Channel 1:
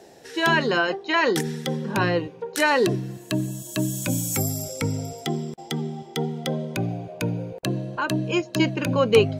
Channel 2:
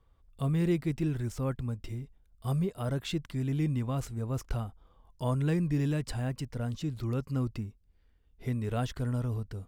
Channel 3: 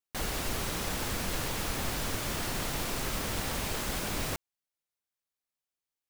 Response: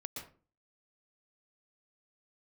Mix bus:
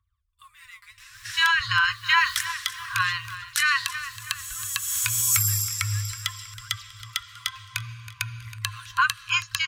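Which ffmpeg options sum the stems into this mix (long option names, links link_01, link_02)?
-filter_complex "[0:a]adelay=1000,volume=-0.5dB,asplit=2[link_01][link_02];[link_02]volume=-18dB[link_03];[1:a]aphaser=in_gain=1:out_gain=1:delay=5:decay=0.76:speed=0.59:type=triangular,volume=-11dB,asplit=3[link_04][link_05][link_06];[link_05]volume=-15dB[link_07];[2:a]adelay=1000,volume=-10dB[link_08];[link_06]apad=whole_len=312810[link_09];[link_08][link_09]sidechaincompress=threshold=-56dB:ratio=8:attack=16:release=330[link_10];[link_01][link_10]amix=inputs=2:normalize=0,bandreject=frequency=50:width_type=h:width=6,bandreject=frequency=100:width_type=h:width=6,bandreject=frequency=150:width_type=h:width=6,bandreject=frequency=200:width_type=h:width=6,bandreject=frequency=250:width_type=h:width=6,bandreject=frequency=300:width_type=h:width=6,bandreject=frequency=350:width_type=h:width=6,alimiter=limit=-16.5dB:level=0:latency=1:release=139,volume=0dB[link_11];[link_03][link_07]amix=inputs=2:normalize=0,aecho=0:1:322|644|966|1288|1610|1932:1|0.42|0.176|0.0741|0.0311|0.0131[link_12];[link_04][link_11][link_12]amix=inputs=3:normalize=0,afftfilt=real='re*(1-between(b*sr/4096,110,1000))':imag='im*(1-between(b*sr/4096,110,1000))':win_size=4096:overlap=0.75,dynaudnorm=framelen=190:gausssize=7:maxgain=8dB,highpass=85"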